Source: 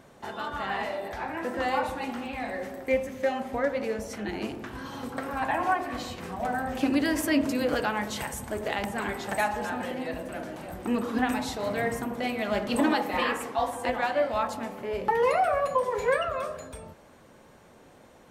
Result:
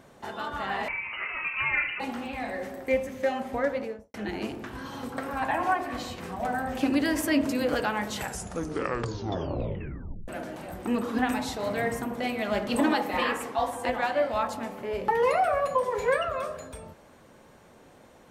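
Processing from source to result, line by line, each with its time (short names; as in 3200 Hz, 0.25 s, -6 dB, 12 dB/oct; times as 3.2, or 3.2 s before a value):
0.88–2 inverted band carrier 2900 Hz
3.69–4.14 studio fade out
8.11 tape stop 2.17 s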